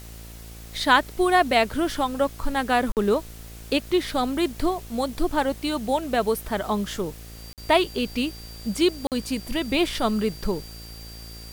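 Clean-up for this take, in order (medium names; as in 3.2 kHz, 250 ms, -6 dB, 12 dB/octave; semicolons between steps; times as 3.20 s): de-hum 56.3 Hz, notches 14; band-stop 4.7 kHz, Q 30; interpolate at 2.92/7.53/9.07 s, 48 ms; noise reduction 28 dB, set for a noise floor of -41 dBFS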